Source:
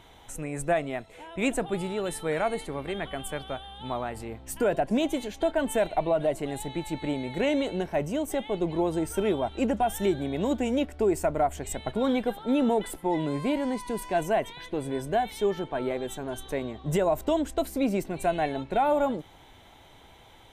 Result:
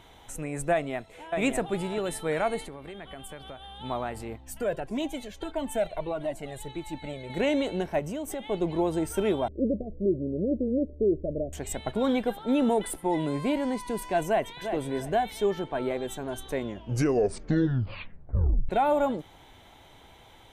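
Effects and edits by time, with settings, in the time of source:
0.72–1.38 echo throw 0.6 s, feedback 15%, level -5 dB
2.68–3.8 compressor 4:1, threshold -39 dBFS
4.36–7.3 cascading flanger falling 1.6 Hz
7.99–8.45 compressor 3:1, threshold -31 dBFS
9.48–11.53 steep low-pass 600 Hz 96 dB/oct
12.62–13.31 bell 9400 Hz +9.5 dB 0.22 oct
14.26–14.71 echo throw 0.35 s, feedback 25%, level -8 dB
16.52 tape stop 2.17 s

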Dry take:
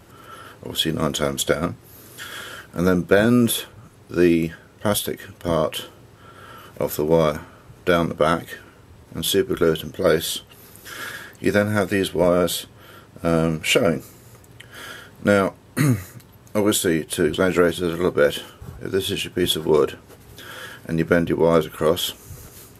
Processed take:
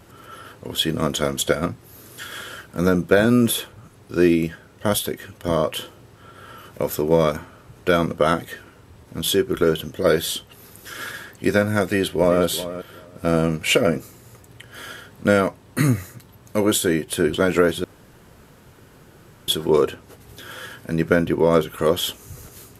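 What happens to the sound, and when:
11.86–12.43 echo throw 0.38 s, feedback 15%, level -13 dB
17.84–19.48 room tone

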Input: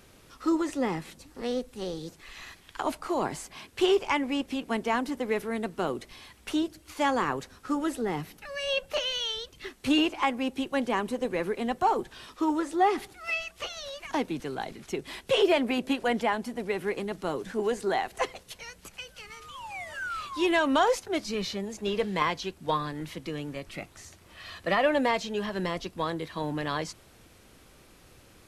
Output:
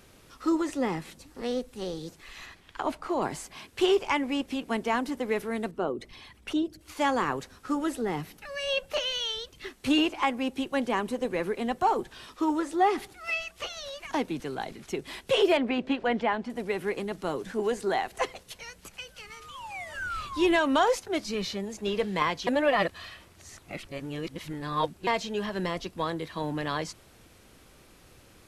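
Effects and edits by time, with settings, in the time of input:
2.46–3.22 high shelf 5500 Hz -10 dB
5.71–6.81 formant sharpening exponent 1.5
15.57–16.5 LPF 3500 Hz
19.94–20.56 low shelf 180 Hz +11.5 dB
22.47–25.07 reverse

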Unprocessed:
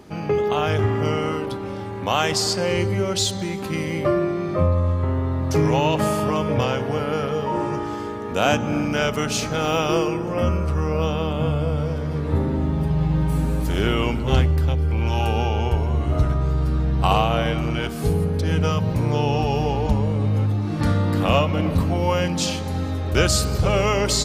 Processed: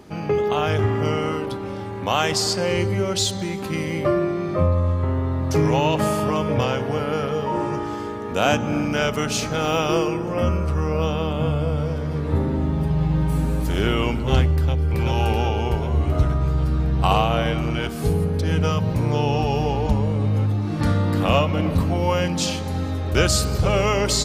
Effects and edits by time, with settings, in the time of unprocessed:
14.56–14.96 echo throw 0.38 s, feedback 65%, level -0.5 dB

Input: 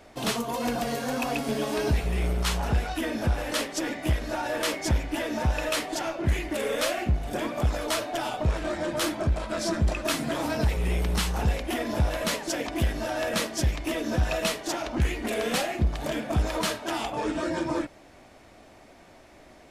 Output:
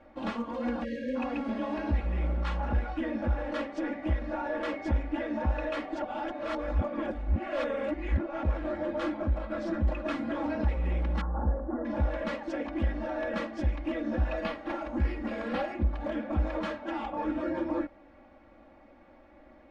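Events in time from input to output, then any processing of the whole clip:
0.84–1.16 spectral delete 620–1600 Hz
6.02–8.43 reverse
11.21–11.85 inverse Chebyshev band-stop 2300–8200 Hz
14.37–15.74 careless resampling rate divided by 6×, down none, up hold
whole clip: LPF 1800 Hz 12 dB/oct; comb 3.6 ms, depth 93%; gain -6 dB

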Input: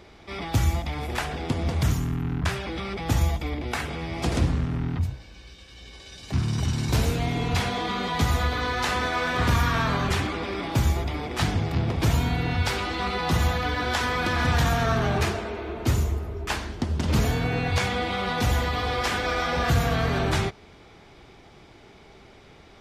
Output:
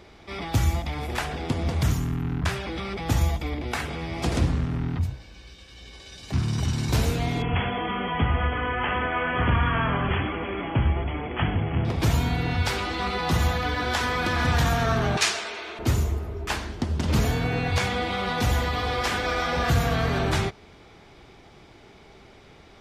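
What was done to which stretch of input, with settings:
7.42–11.85 brick-wall FIR low-pass 3400 Hz
15.17–15.79 weighting filter ITU-R 468

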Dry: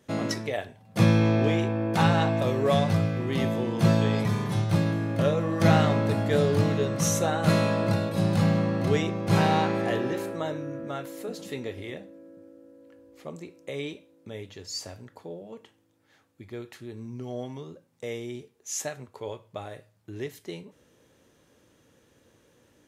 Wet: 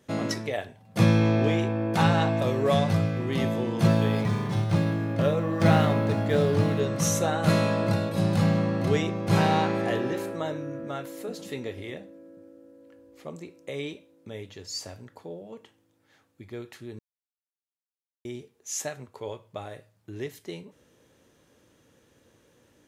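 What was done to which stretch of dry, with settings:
3.87–6.8 decimation joined by straight lines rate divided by 3×
16.99–18.25 mute

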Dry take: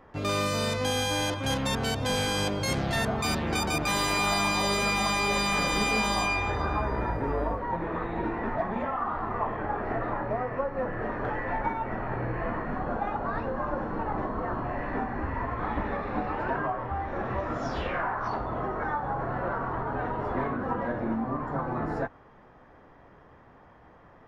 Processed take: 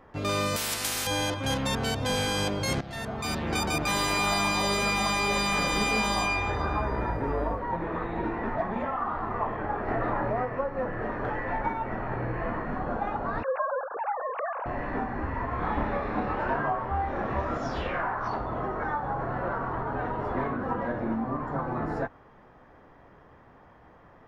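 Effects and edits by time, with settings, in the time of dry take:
0.56–1.07 spectral compressor 10:1
2.81–3.57 fade in, from -14 dB
9.88–10.45 fast leveller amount 70%
13.43–14.66 sine-wave speech
15.5–17.58 doubler 28 ms -3 dB

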